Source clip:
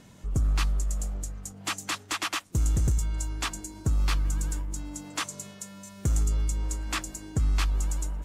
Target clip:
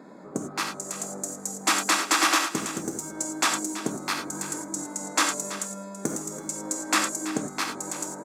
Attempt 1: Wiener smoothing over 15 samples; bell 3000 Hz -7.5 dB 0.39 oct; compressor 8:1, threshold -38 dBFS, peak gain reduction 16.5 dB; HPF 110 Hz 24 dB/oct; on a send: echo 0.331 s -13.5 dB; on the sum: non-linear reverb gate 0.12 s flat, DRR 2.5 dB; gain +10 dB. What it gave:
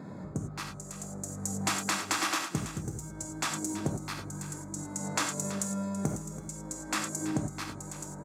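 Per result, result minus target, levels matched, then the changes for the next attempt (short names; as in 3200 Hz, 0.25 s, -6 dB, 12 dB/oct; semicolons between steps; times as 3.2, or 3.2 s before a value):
125 Hz band +13.5 dB; compressor: peak gain reduction +10.5 dB
change: HPF 240 Hz 24 dB/oct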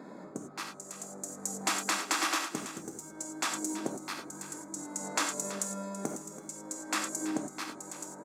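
compressor: peak gain reduction +10.5 dB
change: compressor 8:1, threshold -26 dBFS, peak gain reduction 6 dB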